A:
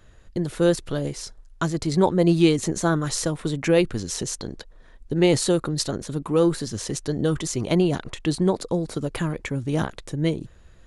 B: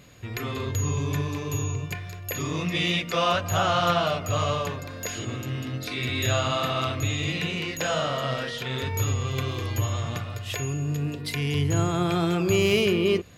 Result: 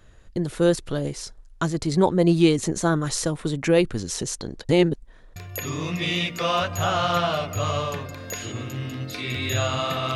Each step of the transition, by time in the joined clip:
A
0:04.69–0:05.36: reverse
0:05.36: continue with B from 0:02.09

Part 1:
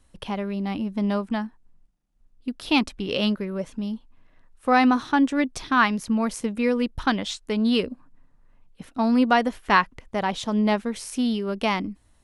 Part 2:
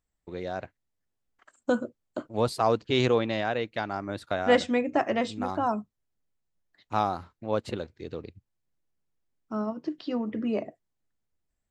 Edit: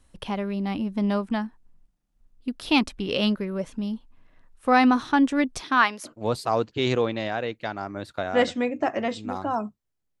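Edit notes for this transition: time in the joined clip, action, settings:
part 1
0:05.59–0:06.13: high-pass filter 190 Hz → 820 Hz
0:06.08: continue with part 2 from 0:02.21, crossfade 0.10 s

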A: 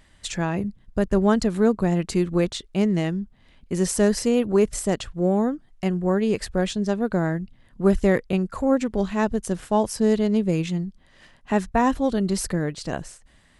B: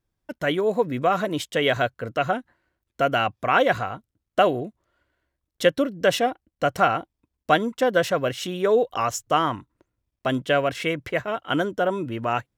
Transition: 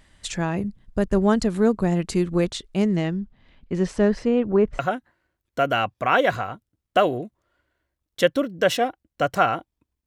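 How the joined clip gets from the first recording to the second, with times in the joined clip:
A
0:02.96–0:04.79: low-pass filter 6,000 Hz → 1,700 Hz
0:04.79: continue with B from 0:02.21

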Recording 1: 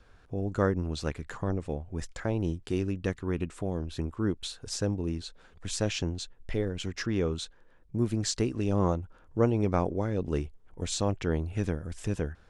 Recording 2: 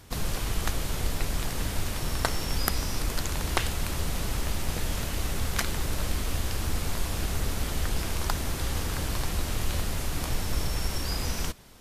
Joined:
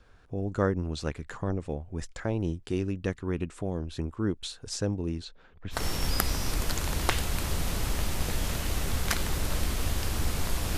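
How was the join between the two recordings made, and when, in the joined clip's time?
recording 1
0:05.24–0:05.84: low-pass filter 5,700 Hz → 1,800 Hz
0:05.77: continue with recording 2 from 0:02.25, crossfade 0.14 s

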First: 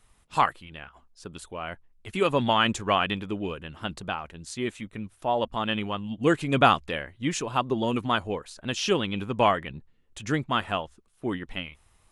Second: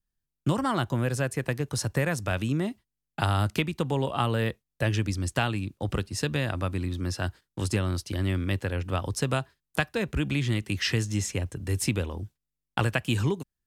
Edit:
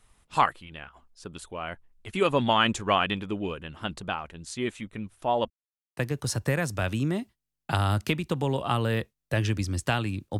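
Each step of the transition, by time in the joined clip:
first
0:05.50–0:05.97: silence
0:05.97: continue with second from 0:01.46

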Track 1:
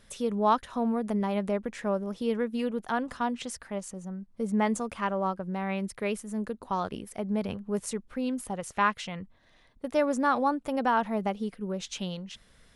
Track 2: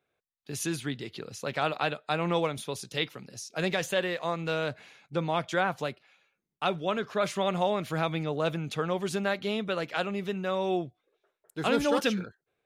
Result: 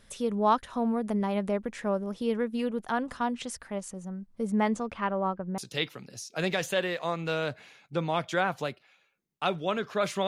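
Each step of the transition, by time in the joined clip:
track 1
0:04.68–0:05.58: low-pass filter 6,000 Hz → 1,700 Hz
0:05.58: continue with track 2 from 0:02.78

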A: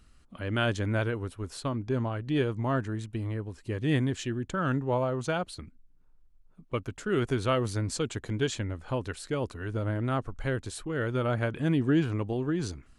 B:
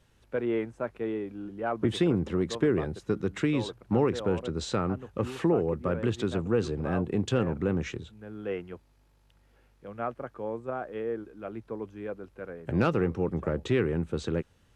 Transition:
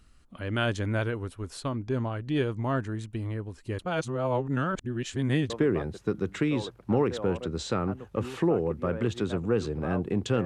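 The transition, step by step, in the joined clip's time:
A
0:03.79–0:05.50: reverse
0:05.50: continue with B from 0:02.52

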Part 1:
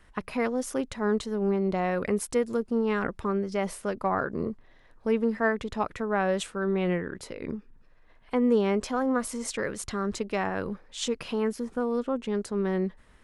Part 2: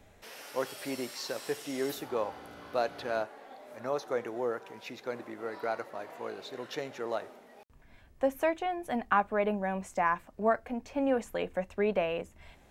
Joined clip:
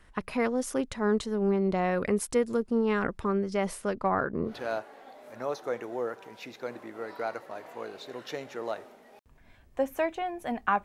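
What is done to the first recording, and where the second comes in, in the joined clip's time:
part 1
0:03.93–0:04.59: low-pass filter 7,800 Hz → 1,500 Hz
0:04.51: continue with part 2 from 0:02.95, crossfade 0.16 s

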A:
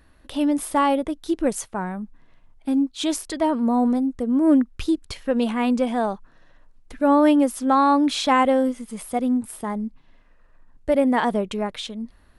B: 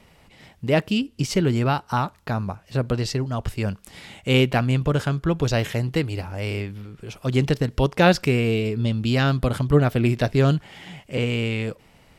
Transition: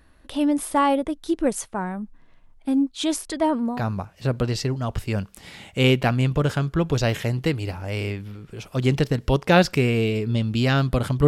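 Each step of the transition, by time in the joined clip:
A
0:03.70: continue with B from 0:02.20, crossfade 0.28 s

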